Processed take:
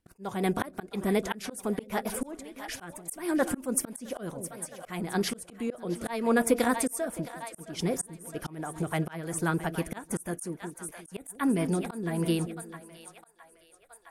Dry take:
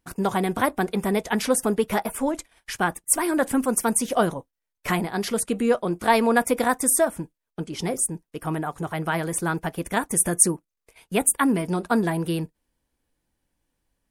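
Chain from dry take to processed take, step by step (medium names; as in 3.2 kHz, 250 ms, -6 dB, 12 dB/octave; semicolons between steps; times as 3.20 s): two-band feedback delay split 570 Hz, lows 175 ms, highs 664 ms, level -14.5 dB; slow attack 330 ms; rotary cabinet horn 6 Hz, later 1 Hz, at 11.41 s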